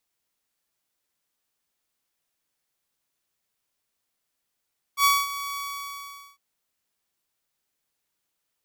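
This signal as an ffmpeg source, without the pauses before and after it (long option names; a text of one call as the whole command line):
ffmpeg -f lavfi -i "aevalsrc='0.224*(2*mod(1130*t,1)-1)':duration=1.405:sample_rate=44100,afade=type=in:duration=0.075,afade=type=out:start_time=0.075:duration=0.221:silence=0.188,afade=type=out:start_time=0.6:duration=0.805" out.wav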